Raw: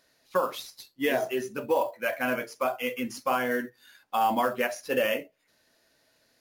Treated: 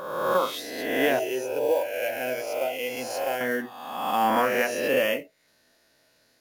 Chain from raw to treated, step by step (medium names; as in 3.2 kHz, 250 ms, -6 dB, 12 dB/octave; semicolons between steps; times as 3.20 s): reverse spectral sustain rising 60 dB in 1.27 s; 1.19–3.41 s: static phaser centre 480 Hz, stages 4